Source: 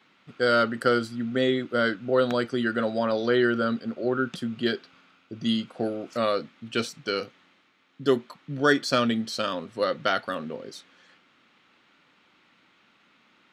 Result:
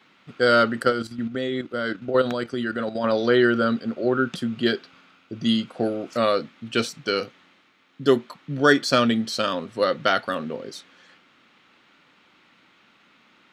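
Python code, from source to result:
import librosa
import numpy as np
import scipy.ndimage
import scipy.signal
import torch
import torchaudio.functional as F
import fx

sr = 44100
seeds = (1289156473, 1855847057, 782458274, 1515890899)

y = fx.level_steps(x, sr, step_db=10, at=(0.82, 3.04))
y = y * librosa.db_to_amplitude(4.0)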